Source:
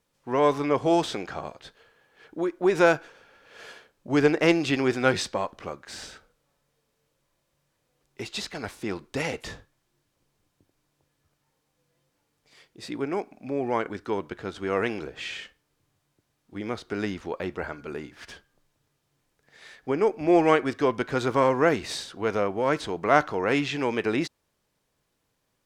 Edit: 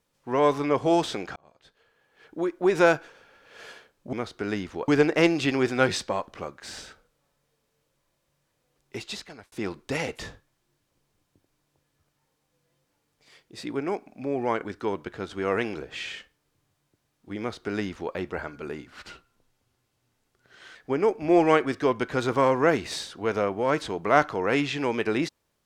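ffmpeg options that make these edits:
ffmpeg -i in.wav -filter_complex "[0:a]asplit=7[link_01][link_02][link_03][link_04][link_05][link_06][link_07];[link_01]atrim=end=1.36,asetpts=PTS-STARTPTS,afade=type=out:start_time=1.356:duration=0.004:curve=hsin[link_08];[link_02]atrim=start=1.36:end=4.132,asetpts=PTS-STARTPTS,afade=type=in:duration=1.07[link_09];[link_03]atrim=start=16.638:end=17.392[link_10];[link_04]atrim=start=4.128:end=8.77,asetpts=PTS-STARTPTS,afade=type=out:start_time=4.092:duration=0.55[link_11];[link_05]atrim=start=8.77:end=18.124,asetpts=PTS-STARTPTS,afade=type=in:duration=0.004:curve=hsin[link_12];[link_06]atrim=start=18.12:end=19.74,asetpts=PTS-STARTPTS,asetrate=37926,aresample=44100,atrim=end_sample=83072,asetpts=PTS-STARTPTS[link_13];[link_07]atrim=start=19.736[link_14];[link_08][link_09]concat=n=2:v=0:a=1[link_15];[link_15][link_10]acrossfade=duration=0.004:curve1=hsin:curve2=hsin[link_16];[link_11][link_12]concat=n=2:v=0:a=1[link_17];[link_16][link_17]acrossfade=duration=0.004:curve1=hsin:curve2=hsin[link_18];[link_18][link_13]acrossfade=duration=0.004:curve1=hsin:curve2=hsin[link_19];[link_19][link_14]acrossfade=duration=0.004:curve1=hsin:curve2=hsin" out.wav

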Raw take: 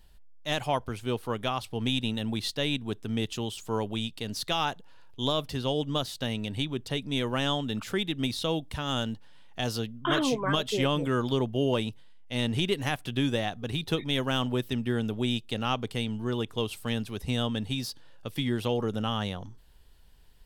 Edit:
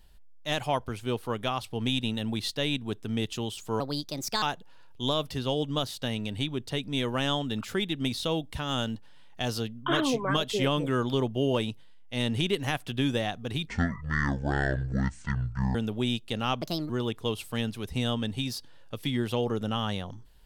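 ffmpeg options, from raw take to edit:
ffmpeg -i in.wav -filter_complex "[0:a]asplit=7[link_01][link_02][link_03][link_04][link_05][link_06][link_07];[link_01]atrim=end=3.804[link_08];[link_02]atrim=start=3.8:end=4.61,asetpts=PTS-STARTPTS,asetrate=57330,aresample=44100[link_09];[link_03]atrim=start=4.606:end=13.864[link_10];[link_04]atrim=start=13.86:end=14.96,asetpts=PTS-STARTPTS,asetrate=23373,aresample=44100,atrim=end_sample=91528,asetpts=PTS-STARTPTS[link_11];[link_05]atrim=start=14.956:end=15.834[link_12];[link_06]atrim=start=15.83:end=16.22,asetpts=PTS-STARTPTS,asetrate=62181,aresample=44100[link_13];[link_07]atrim=start=16.216[link_14];[link_08][link_09]acrossfade=duration=0.004:curve1=hsin:curve2=hsin[link_15];[link_15][link_10]acrossfade=duration=0.004:curve1=hsin:curve2=hsin[link_16];[link_16][link_11]acrossfade=duration=0.004:curve1=hsin:curve2=hsin[link_17];[link_17][link_12]acrossfade=duration=0.004:curve1=hsin:curve2=hsin[link_18];[link_18][link_13]acrossfade=duration=0.004:curve1=hsin:curve2=hsin[link_19];[link_19][link_14]acrossfade=duration=0.004:curve1=hsin:curve2=hsin" out.wav

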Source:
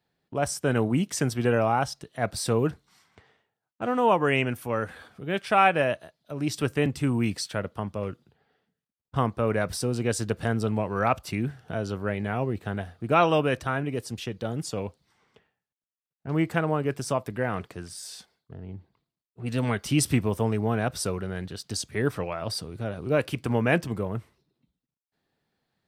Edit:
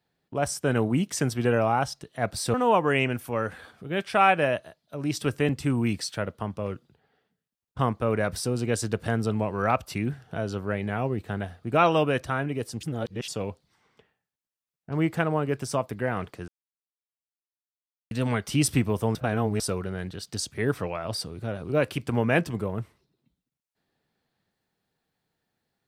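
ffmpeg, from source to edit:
ffmpeg -i in.wav -filter_complex "[0:a]asplit=8[link_01][link_02][link_03][link_04][link_05][link_06][link_07][link_08];[link_01]atrim=end=2.542[link_09];[link_02]atrim=start=3.908:end=14.202[link_10];[link_03]atrim=start=14.198:end=14.652,asetpts=PTS-STARTPTS,areverse[link_11];[link_04]atrim=start=14.648:end=17.85,asetpts=PTS-STARTPTS,afade=type=out:start_time=3.198:duration=0.004:curve=hsin[link_12];[link_05]atrim=start=17.85:end=19.48,asetpts=PTS-STARTPTS,volume=0[link_13];[link_06]atrim=start=19.48:end=20.522,asetpts=PTS-STARTPTS,afade=type=in:duration=0.004:curve=hsin[link_14];[link_07]atrim=start=20.518:end=20.972,asetpts=PTS-STARTPTS,areverse[link_15];[link_08]atrim=start=20.968[link_16];[link_09][link_10]acrossfade=duration=0.004:curve1=hsin:curve2=hsin[link_17];[link_17][link_11]acrossfade=duration=0.004:curve1=hsin:curve2=hsin[link_18];[link_12][link_13][link_14]concat=n=3:v=0:a=1[link_19];[link_18][link_19]acrossfade=duration=0.004:curve1=hsin:curve2=hsin[link_20];[link_20][link_15]acrossfade=duration=0.004:curve1=hsin:curve2=hsin[link_21];[link_21][link_16]acrossfade=duration=0.004:curve1=hsin:curve2=hsin" out.wav

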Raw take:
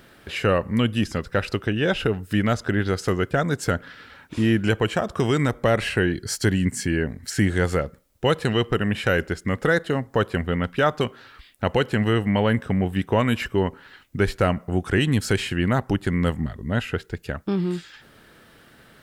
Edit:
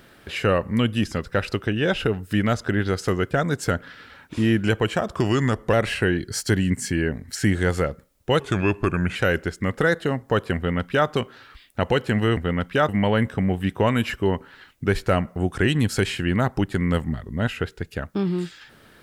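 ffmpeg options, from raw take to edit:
ffmpeg -i in.wav -filter_complex "[0:a]asplit=7[link_01][link_02][link_03][link_04][link_05][link_06][link_07];[link_01]atrim=end=5.164[link_08];[link_02]atrim=start=5.16:end=5.68,asetpts=PTS-STARTPTS,asetrate=40131,aresample=44100[link_09];[link_03]atrim=start=5.676:end=8.354[link_10];[link_04]atrim=start=8.35:end=9,asetpts=PTS-STARTPTS,asetrate=37926,aresample=44100,atrim=end_sample=33331,asetpts=PTS-STARTPTS[link_11];[link_05]atrim=start=8.996:end=12.212[link_12];[link_06]atrim=start=10.398:end=10.922[link_13];[link_07]atrim=start=12.208[link_14];[link_08][link_09]acrossfade=duration=0.004:curve1=hsin:curve2=hsin[link_15];[link_15][link_10]acrossfade=duration=0.004:curve1=hsin:curve2=hsin[link_16];[link_16][link_11]acrossfade=duration=0.004:curve1=hsin:curve2=hsin[link_17];[link_17][link_12]acrossfade=duration=0.004:curve1=hsin:curve2=hsin[link_18];[link_18][link_13]acrossfade=duration=0.004:curve1=hsin:curve2=hsin[link_19];[link_19][link_14]acrossfade=duration=0.004:curve1=hsin:curve2=hsin" out.wav

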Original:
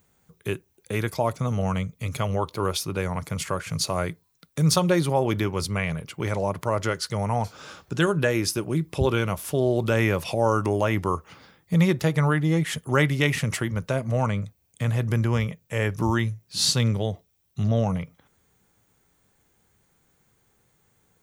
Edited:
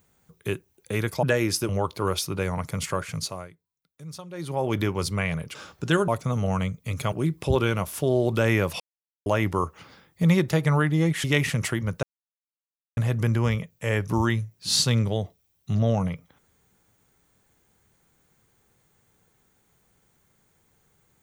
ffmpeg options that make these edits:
ffmpeg -i in.wav -filter_complex "[0:a]asplit=13[link_01][link_02][link_03][link_04][link_05][link_06][link_07][link_08][link_09][link_10][link_11][link_12][link_13];[link_01]atrim=end=1.232[link_14];[link_02]atrim=start=8.168:end=8.632[link_15];[link_03]atrim=start=2.268:end=4.07,asetpts=PTS-STARTPTS,afade=type=out:start_time=1.332:duration=0.47:silence=0.105925[link_16];[link_04]atrim=start=4.07:end=4.91,asetpts=PTS-STARTPTS,volume=-19.5dB[link_17];[link_05]atrim=start=4.91:end=6.132,asetpts=PTS-STARTPTS,afade=type=in:duration=0.47:silence=0.105925[link_18];[link_06]atrim=start=7.638:end=8.172[link_19];[link_07]atrim=start=1.228:end=2.272[link_20];[link_08]atrim=start=8.628:end=10.31,asetpts=PTS-STARTPTS,afade=type=out:start_time=1.678:duration=0.004:curve=hsin[link_21];[link_09]atrim=start=10.31:end=10.77,asetpts=PTS-STARTPTS,volume=0[link_22];[link_10]atrim=start=10.77:end=12.752,asetpts=PTS-STARTPTS,afade=type=in:duration=0.004:curve=hsin[link_23];[link_11]atrim=start=13.128:end=13.92,asetpts=PTS-STARTPTS,afade=type=out:start_time=0.788:duration=0.004:curve=hsin[link_24];[link_12]atrim=start=13.92:end=14.86,asetpts=PTS-STARTPTS,volume=0[link_25];[link_13]atrim=start=14.86,asetpts=PTS-STARTPTS,afade=type=in:duration=0.004:curve=hsin[link_26];[link_14][link_15]acrossfade=duration=0.004:curve1=hsin:curve2=hsin[link_27];[link_16][link_17][link_18]concat=n=3:v=0:a=1[link_28];[link_27][link_28]acrossfade=duration=0.004:curve1=hsin:curve2=hsin[link_29];[link_29][link_19]acrossfade=duration=0.004:curve1=hsin:curve2=hsin[link_30];[link_30][link_20]acrossfade=duration=0.004:curve1=hsin:curve2=hsin[link_31];[link_21][link_22][link_23]concat=n=3:v=0:a=1[link_32];[link_31][link_32]acrossfade=duration=0.004:curve1=hsin:curve2=hsin[link_33];[link_24][link_25][link_26]concat=n=3:v=0:a=1[link_34];[link_33][link_34]acrossfade=duration=0.004:curve1=hsin:curve2=hsin" out.wav

